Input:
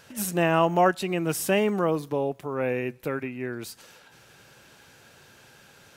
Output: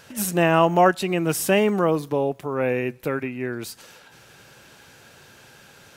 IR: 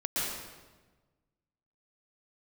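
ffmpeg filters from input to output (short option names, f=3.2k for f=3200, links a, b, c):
-af "volume=4dB"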